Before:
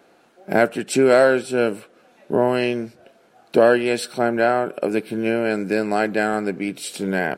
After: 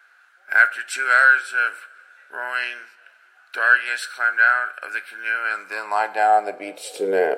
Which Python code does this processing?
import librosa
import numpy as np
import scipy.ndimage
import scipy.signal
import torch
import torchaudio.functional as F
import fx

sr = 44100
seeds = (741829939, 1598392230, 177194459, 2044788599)

y = fx.filter_sweep_highpass(x, sr, from_hz=1500.0, to_hz=460.0, start_s=5.3, end_s=7.02, q=6.5)
y = fx.rev_double_slope(y, sr, seeds[0], early_s=0.45, late_s=3.0, knee_db=-19, drr_db=12.5)
y = y * 10.0 ** (-4.0 / 20.0)